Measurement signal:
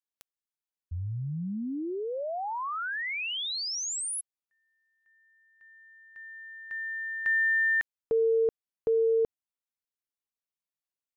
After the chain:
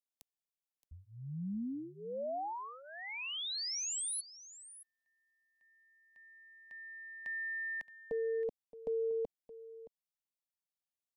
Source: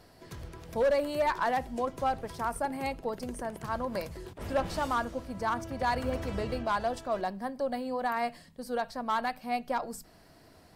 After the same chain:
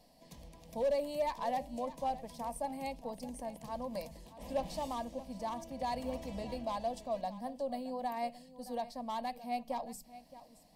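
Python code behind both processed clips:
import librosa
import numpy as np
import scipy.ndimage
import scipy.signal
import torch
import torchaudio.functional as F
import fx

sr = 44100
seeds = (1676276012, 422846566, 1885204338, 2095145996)

p1 = fx.fixed_phaser(x, sr, hz=380.0, stages=6)
p2 = p1 + fx.echo_single(p1, sr, ms=621, db=-16.0, dry=0)
y = p2 * 10.0 ** (-4.5 / 20.0)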